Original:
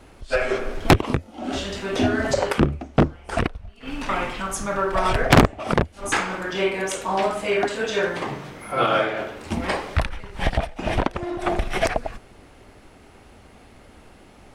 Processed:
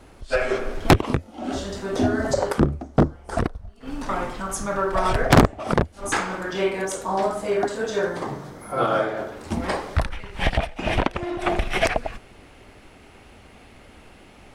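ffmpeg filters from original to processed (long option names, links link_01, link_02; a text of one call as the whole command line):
ffmpeg -i in.wav -af "asetnsamples=nb_out_samples=441:pad=0,asendcmd='1.53 equalizer g -12;4.49 equalizer g -5;6.85 equalizer g -12.5;9.32 equalizer g -6;10.12 equalizer g 4.5',equalizer=frequency=2600:width_type=o:width=0.95:gain=-2" out.wav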